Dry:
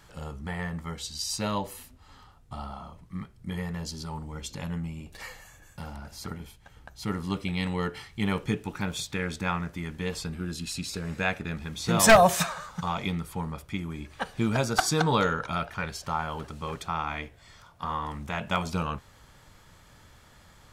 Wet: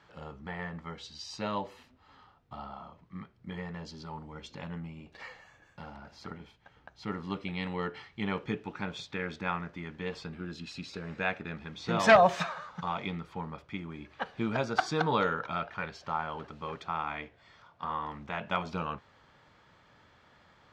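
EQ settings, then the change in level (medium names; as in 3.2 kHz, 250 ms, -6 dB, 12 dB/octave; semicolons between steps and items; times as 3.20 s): high-pass 260 Hz 6 dB/octave; distance through air 200 m; -1.5 dB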